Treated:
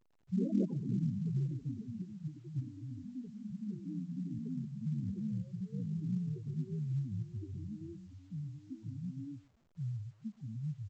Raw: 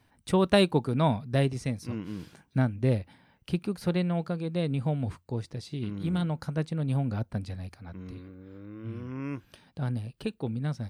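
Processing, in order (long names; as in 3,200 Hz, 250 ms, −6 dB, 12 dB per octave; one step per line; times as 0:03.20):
noise gate −52 dBFS, range −24 dB
parametric band 590 Hz −5 dB 1.4 octaves
0:02.60–0:04.83: downward compressor 5 to 1, threshold −35 dBFS, peak gain reduction 12.5 dB
spectral peaks only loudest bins 2
delay with pitch and tempo change per echo 88 ms, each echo +3 semitones, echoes 3
linear-phase brick-wall low-pass 1,100 Hz
single-tap delay 121 ms −21 dB
level −6 dB
A-law companding 128 kbit/s 16,000 Hz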